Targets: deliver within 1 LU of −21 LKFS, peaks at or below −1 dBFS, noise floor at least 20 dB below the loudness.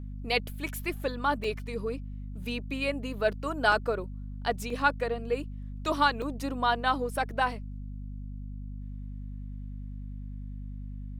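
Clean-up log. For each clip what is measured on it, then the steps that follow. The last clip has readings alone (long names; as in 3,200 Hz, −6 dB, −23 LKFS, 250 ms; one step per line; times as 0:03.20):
number of dropouts 5; longest dropout 3.2 ms; mains hum 50 Hz; hum harmonics up to 250 Hz; level of the hum −36 dBFS; integrated loudness −30.5 LKFS; sample peak −11.0 dBFS; target loudness −21.0 LKFS
→ repair the gap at 0:00.67/0:01.44/0:03.72/0:04.70/0:06.22, 3.2 ms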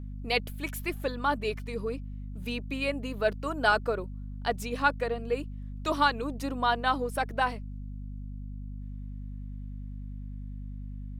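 number of dropouts 0; mains hum 50 Hz; hum harmonics up to 250 Hz; level of the hum −36 dBFS
→ mains-hum notches 50/100/150/200/250 Hz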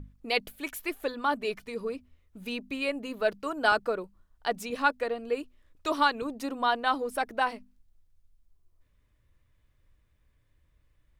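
mains hum none found; integrated loudness −30.5 LKFS; sample peak −11.0 dBFS; target loudness −21.0 LKFS
→ level +9.5 dB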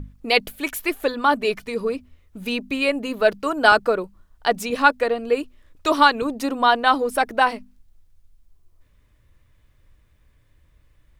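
integrated loudness −21.0 LKFS; sample peak −1.5 dBFS; background noise floor −59 dBFS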